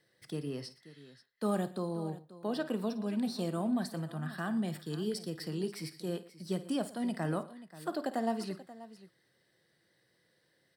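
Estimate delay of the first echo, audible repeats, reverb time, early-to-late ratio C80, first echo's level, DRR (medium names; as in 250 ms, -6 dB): 53 ms, 3, no reverb, no reverb, -14.5 dB, no reverb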